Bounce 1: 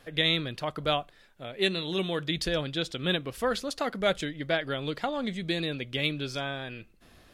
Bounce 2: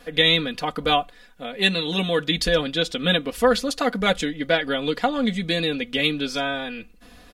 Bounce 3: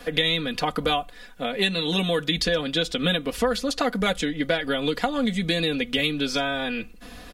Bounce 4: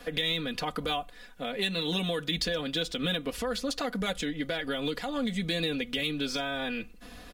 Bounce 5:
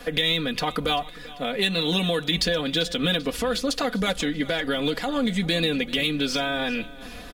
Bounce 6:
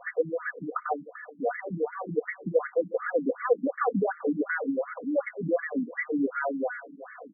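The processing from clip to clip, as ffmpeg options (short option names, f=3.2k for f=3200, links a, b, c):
-af "aecho=1:1:4.1:0.88,volume=5.5dB"
-filter_complex "[0:a]acrossover=split=95|7000[a][b][c];[a]acompressor=threshold=-44dB:ratio=4[d];[b]acompressor=threshold=-28dB:ratio=4[e];[c]acompressor=threshold=-49dB:ratio=4[f];[d][e][f]amix=inputs=3:normalize=0,volume=6dB"
-filter_complex "[0:a]acrossover=split=3200[a][b];[a]alimiter=limit=-17.5dB:level=0:latency=1[c];[b]acrusher=bits=5:mode=log:mix=0:aa=0.000001[d];[c][d]amix=inputs=2:normalize=0,volume=-5dB"
-af "aecho=1:1:391|782|1173|1564:0.112|0.0572|0.0292|0.0149,volume=6.5dB"
-af "highpass=180,equalizer=f=230:t=q:w=4:g=-4,equalizer=f=340:t=q:w=4:g=-6,equalizer=f=480:t=q:w=4:g=5,equalizer=f=890:t=q:w=4:g=-5,equalizer=f=2.4k:t=q:w=4:g=-6,lowpass=f=2.5k:w=0.5412,lowpass=f=2.5k:w=1.3066,afftfilt=real='re*between(b*sr/1024,230*pow(1600/230,0.5+0.5*sin(2*PI*2.7*pts/sr))/1.41,230*pow(1600/230,0.5+0.5*sin(2*PI*2.7*pts/sr))*1.41)':imag='im*between(b*sr/1024,230*pow(1600/230,0.5+0.5*sin(2*PI*2.7*pts/sr))/1.41,230*pow(1600/230,0.5+0.5*sin(2*PI*2.7*pts/sr))*1.41)':win_size=1024:overlap=0.75,volume=5dB"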